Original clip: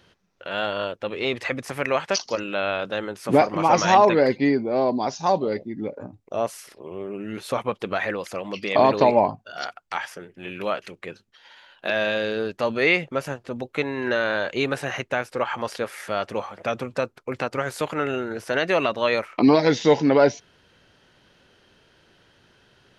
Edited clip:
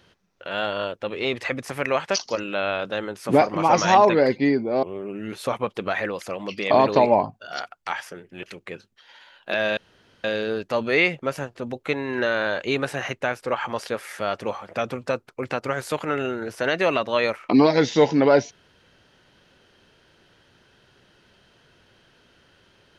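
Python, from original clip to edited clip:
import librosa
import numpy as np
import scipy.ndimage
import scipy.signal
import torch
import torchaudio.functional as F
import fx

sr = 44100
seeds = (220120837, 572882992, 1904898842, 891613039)

y = fx.edit(x, sr, fx.cut(start_s=4.83, length_s=2.05),
    fx.cut(start_s=10.48, length_s=0.31),
    fx.insert_room_tone(at_s=12.13, length_s=0.47), tone=tone)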